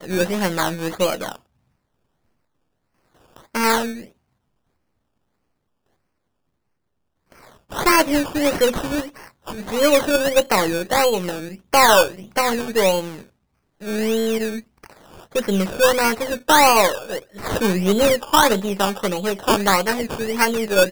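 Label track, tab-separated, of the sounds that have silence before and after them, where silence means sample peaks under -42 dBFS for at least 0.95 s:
3.360000	4.080000	sound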